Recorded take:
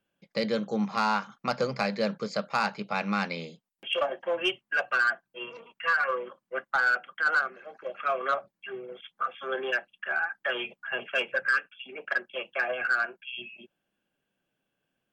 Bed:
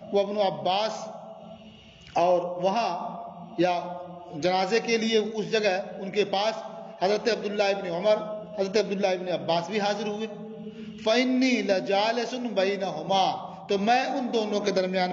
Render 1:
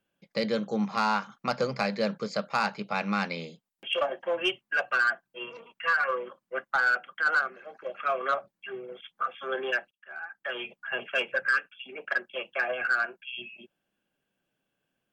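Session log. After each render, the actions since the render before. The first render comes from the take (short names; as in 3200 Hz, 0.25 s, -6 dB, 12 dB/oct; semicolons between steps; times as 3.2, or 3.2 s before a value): 9.91–10.89 fade in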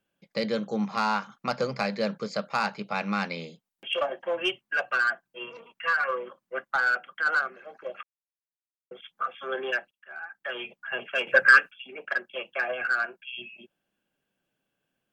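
8.03–8.91 mute; 11.27–11.71 gain +9.5 dB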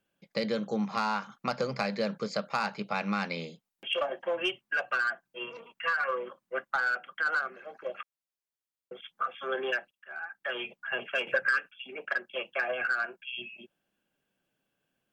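compressor 4:1, threshold -26 dBFS, peak gain reduction 12 dB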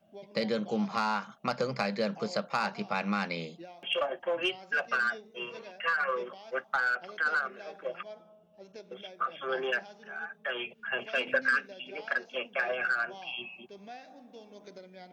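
add bed -24 dB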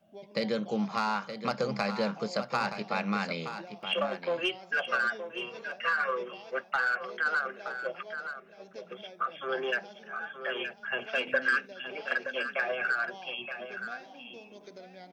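echo 0.922 s -9.5 dB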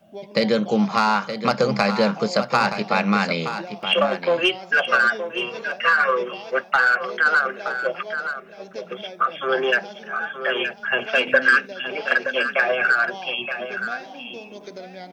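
gain +11 dB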